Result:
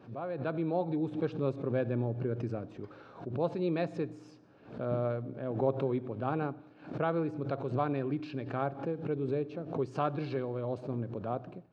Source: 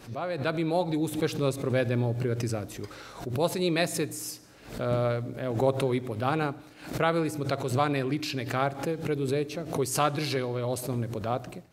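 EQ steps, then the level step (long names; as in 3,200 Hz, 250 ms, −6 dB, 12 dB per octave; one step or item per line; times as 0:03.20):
high-pass filter 120 Hz
head-to-tape spacing loss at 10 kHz 42 dB
notch filter 2,000 Hz, Q 6.6
−2.5 dB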